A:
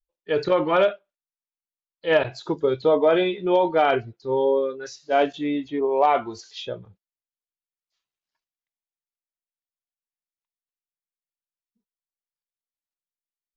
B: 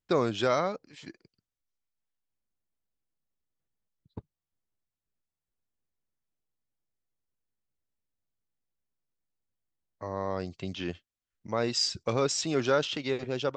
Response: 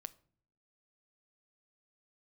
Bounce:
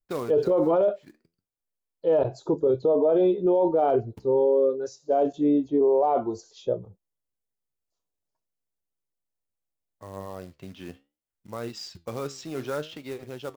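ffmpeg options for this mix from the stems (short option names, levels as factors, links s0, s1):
-filter_complex "[0:a]firequalizer=gain_entry='entry(170,0);entry(480,5);entry(1900,-22);entry(7100,-3)':delay=0.05:min_phase=1,volume=1.26,asplit=2[s0][s1];[1:a]highshelf=f=2600:g=-8.5,acrusher=bits=4:mode=log:mix=0:aa=0.000001,flanger=delay=8.7:depth=7.5:regen=73:speed=0.6:shape=triangular,volume=0.944[s2];[s1]apad=whole_len=598124[s3];[s2][s3]sidechaincompress=threshold=0.0398:ratio=8:attack=16:release=174[s4];[s0][s4]amix=inputs=2:normalize=0,alimiter=limit=0.188:level=0:latency=1:release=15"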